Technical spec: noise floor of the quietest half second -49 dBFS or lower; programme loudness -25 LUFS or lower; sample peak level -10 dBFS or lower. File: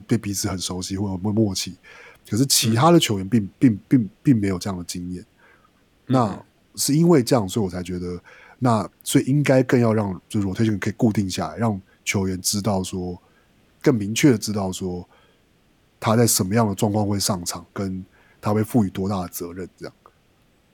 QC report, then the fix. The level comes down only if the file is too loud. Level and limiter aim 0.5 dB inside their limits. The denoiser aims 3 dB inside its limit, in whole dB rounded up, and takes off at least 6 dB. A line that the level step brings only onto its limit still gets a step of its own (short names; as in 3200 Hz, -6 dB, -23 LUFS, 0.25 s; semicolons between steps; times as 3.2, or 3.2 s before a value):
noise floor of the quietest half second -60 dBFS: OK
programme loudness -21.5 LUFS: fail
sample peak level -4.5 dBFS: fail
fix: gain -4 dB; limiter -10.5 dBFS